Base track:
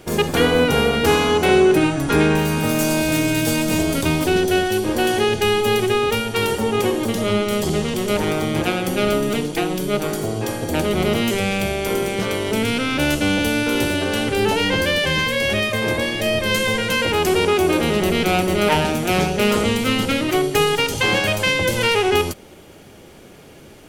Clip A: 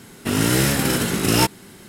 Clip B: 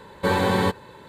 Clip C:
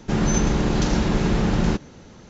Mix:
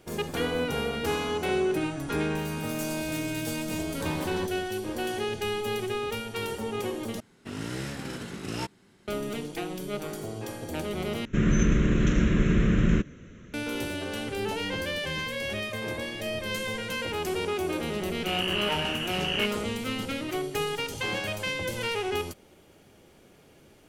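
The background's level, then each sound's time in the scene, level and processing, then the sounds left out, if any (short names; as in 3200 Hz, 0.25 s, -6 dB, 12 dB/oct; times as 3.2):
base track -12.5 dB
3.76 add B -15 dB
7.2 replace with A -15.5 dB + air absorption 59 m
11.25 replace with C -1 dB + fixed phaser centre 2000 Hz, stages 4
18 add A -12 dB + inverted band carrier 3100 Hz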